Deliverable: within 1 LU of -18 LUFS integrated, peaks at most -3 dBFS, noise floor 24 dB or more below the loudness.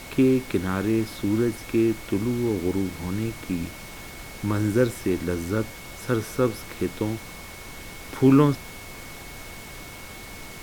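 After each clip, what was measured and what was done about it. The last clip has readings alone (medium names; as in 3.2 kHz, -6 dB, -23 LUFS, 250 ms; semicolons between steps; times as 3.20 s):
steady tone 2.2 kHz; tone level -45 dBFS; noise floor -41 dBFS; noise floor target -49 dBFS; loudness -25.0 LUFS; peak level -6.0 dBFS; loudness target -18.0 LUFS
-> band-stop 2.2 kHz, Q 30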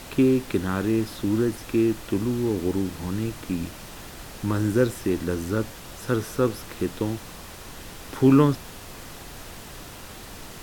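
steady tone not found; noise floor -42 dBFS; noise floor target -49 dBFS
-> noise print and reduce 7 dB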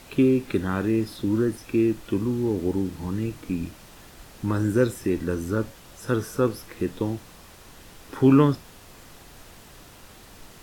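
noise floor -48 dBFS; noise floor target -49 dBFS
-> noise print and reduce 6 dB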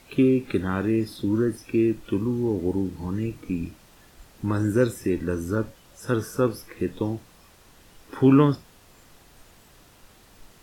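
noise floor -54 dBFS; loudness -25.0 LUFS; peak level -6.0 dBFS; loudness target -18.0 LUFS
-> trim +7 dB; peak limiter -3 dBFS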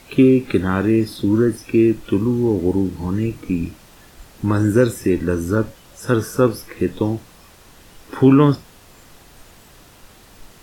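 loudness -18.5 LUFS; peak level -3.0 dBFS; noise floor -47 dBFS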